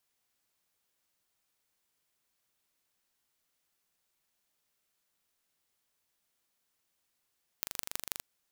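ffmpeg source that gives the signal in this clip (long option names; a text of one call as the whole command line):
ffmpeg -f lavfi -i "aevalsrc='0.562*eq(mod(n,1793),0)*(0.5+0.5*eq(mod(n,7172),0))':duration=0.6:sample_rate=44100" out.wav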